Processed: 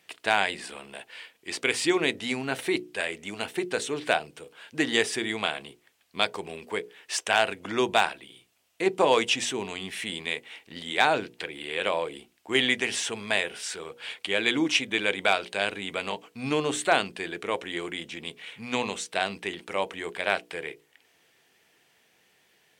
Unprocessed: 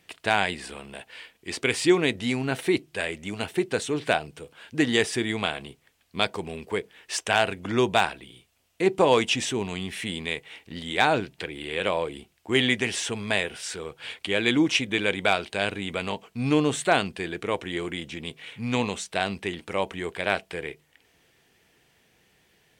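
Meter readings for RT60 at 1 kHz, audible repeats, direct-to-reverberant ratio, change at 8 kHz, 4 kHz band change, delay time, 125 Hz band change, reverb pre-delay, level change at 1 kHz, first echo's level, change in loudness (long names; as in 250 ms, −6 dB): no reverb audible, no echo audible, no reverb audible, 0.0 dB, 0.0 dB, no echo audible, −9.5 dB, no reverb audible, −0.5 dB, no echo audible, −1.5 dB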